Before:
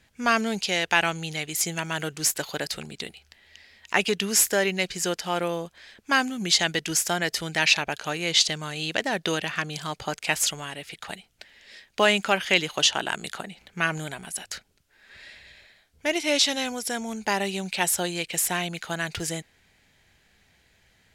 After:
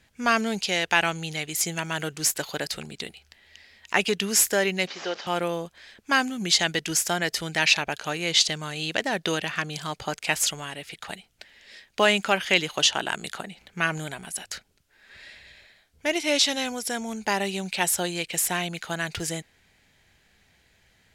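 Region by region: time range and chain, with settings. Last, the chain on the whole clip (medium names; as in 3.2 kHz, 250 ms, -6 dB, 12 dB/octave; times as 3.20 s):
4.87–5.27 s: one-bit delta coder 32 kbps, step -36 dBFS + high-pass 380 Hz
whole clip: none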